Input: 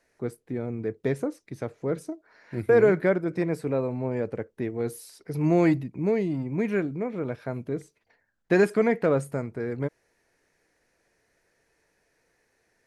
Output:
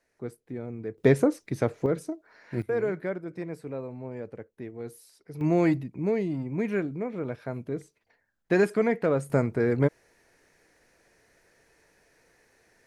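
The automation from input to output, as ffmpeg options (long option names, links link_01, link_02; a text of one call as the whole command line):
ffmpeg -i in.wav -af "asetnsamples=nb_out_samples=441:pad=0,asendcmd='0.98 volume volume 7dB;1.86 volume volume 1dB;2.62 volume volume -9dB;5.41 volume volume -2dB;9.3 volume volume 6.5dB',volume=-5dB" out.wav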